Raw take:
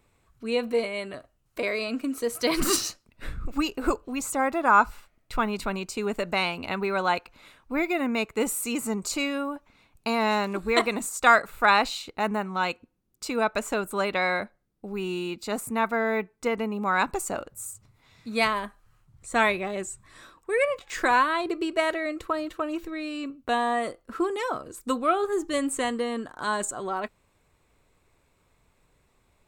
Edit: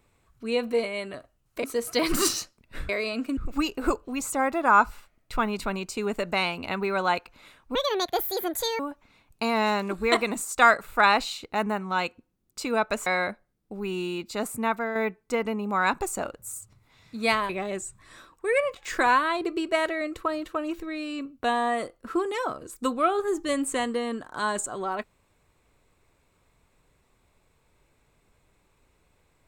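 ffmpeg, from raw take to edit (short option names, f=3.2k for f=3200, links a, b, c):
-filter_complex "[0:a]asplit=9[a][b][c][d][e][f][g][h][i];[a]atrim=end=1.642[j];[b]atrim=start=2.118:end=3.372[k];[c]atrim=start=1.638:end=2.122[l];[d]atrim=start=3.368:end=7.754[m];[e]atrim=start=7.75:end=9.44,asetpts=PTS-STARTPTS,asetrate=71442,aresample=44100[n];[f]atrim=start=9.436:end=13.712[o];[g]atrim=start=14.188:end=16.08,asetpts=PTS-STARTPTS,afade=t=out:st=1.572:d=0.32:silence=0.473151[p];[h]atrim=start=16.08:end=18.622,asetpts=PTS-STARTPTS,afade=t=in:d=0.004:c=hsin:silence=0.473151[q];[i]atrim=start=19.538[r];[j][k]acrossfade=d=0.004:c1=hsin:c2=hsin[s];[s][l]acrossfade=d=0.004:c1=hsin:c2=hsin[t];[t][m]acrossfade=d=0.004:c1=hsin:c2=hsin[u];[u][n]acrossfade=d=0.004:c1=hsin:c2=hsin[v];[v][o]acrossfade=d=0.004:c1=hsin:c2=hsin[w];[p][q]concat=n=2:v=0:a=1[x];[w][x]acrossfade=d=0.004:c1=hsin:c2=hsin[y];[y][r]acrossfade=d=0.004:c1=hsin:c2=hsin"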